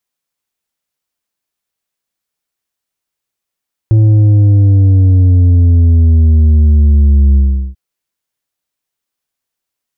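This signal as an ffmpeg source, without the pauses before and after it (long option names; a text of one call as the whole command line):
ffmpeg -f lavfi -i "aevalsrc='0.562*clip((3.84-t)/0.39,0,1)*tanh(2*sin(2*PI*110*3.84/log(65/110)*(exp(log(65/110)*t/3.84)-1)))/tanh(2)':duration=3.84:sample_rate=44100" out.wav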